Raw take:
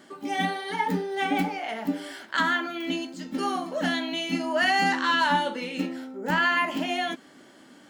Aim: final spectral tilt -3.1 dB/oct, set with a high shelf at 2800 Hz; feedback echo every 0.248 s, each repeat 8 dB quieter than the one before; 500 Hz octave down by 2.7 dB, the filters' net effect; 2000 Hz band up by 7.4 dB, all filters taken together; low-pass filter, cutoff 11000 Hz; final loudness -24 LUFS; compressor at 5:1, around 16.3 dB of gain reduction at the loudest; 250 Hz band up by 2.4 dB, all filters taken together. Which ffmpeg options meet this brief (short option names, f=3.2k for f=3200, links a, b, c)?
-af "lowpass=11k,equalizer=f=250:t=o:g=4.5,equalizer=f=500:t=o:g=-6.5,equalizer=f=2k:t=o:g=6.5,highshelf=f=2.8k:g=7.5,acompressor=threshold=-32dB:ratio=5,aecho=1:1:248|496|744|992|1240:0.398|0.159|0.0637|0.0255|0.0102,volume=9dB"